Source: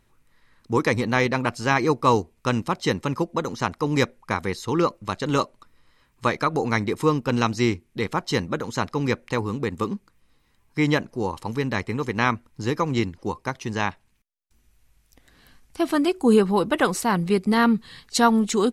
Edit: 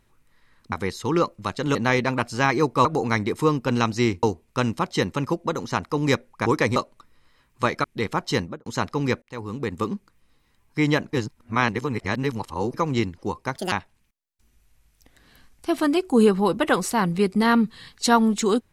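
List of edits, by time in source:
0:00.72–0:01.02: swap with 0:04.35–0:05.38
0:06.46–0:07.84: move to 0:02.12
0:08.38–0:08.66: fade out and dull
0:09.22–0:09.90: fade in equal-power
0:11.13–0:12.74: reverse
0:13.56–0:13.83: play speed 171%

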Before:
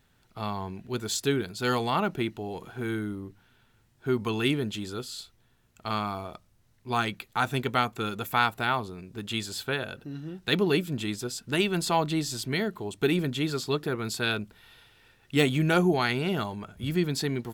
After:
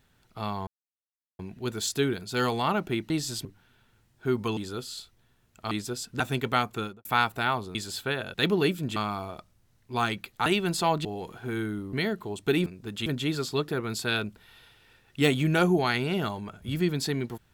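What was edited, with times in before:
0:00.67: splice in silence 0.72 s
0:02.38–0:03.26: swap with 0:12.13–0:12.48
0:04.38–0:04.78: remove
0:05.92–0:07.42: swap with 0:11.05–0:11.54
0:07.98–0:08.27: fade out and dull
0:08.97–0:09.37: move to 0:13.21
0:09.96–0:10.43: remove

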